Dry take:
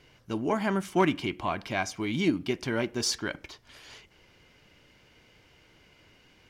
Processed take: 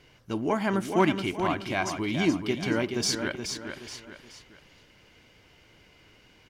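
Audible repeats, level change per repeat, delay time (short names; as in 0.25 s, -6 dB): 3, -8.5 dB, 0.425 s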